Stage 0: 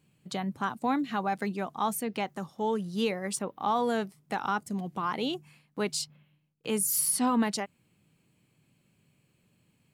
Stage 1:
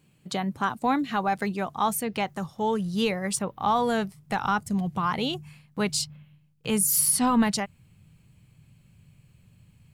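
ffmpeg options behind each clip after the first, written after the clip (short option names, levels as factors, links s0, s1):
-af "asubboost=boost=9.5:cutoff=100,volume=1.78"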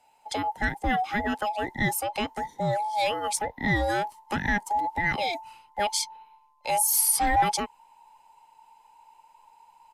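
-filter_complex "[0:a]afftfilt=real='real(if(between(b,1,1008),(2*floor((b-1)/48)+1)*48-b,b),0)':imag='imag(if(between(b,1,1008),(2*floor((b-1)/48)+1)*48-b,b),0)*if(between(b,1,1008),-1,1)':win_size=2048:overlap=0.75,acrossover=split=190|620|3600[s0][s1][s2][s3];[s1]asoftclip=type=hard:threshold=0.0266[s4];[s0][s4][s2][s3]amix=inputs=4:normalize=0,aresample=32000,aresample=44100"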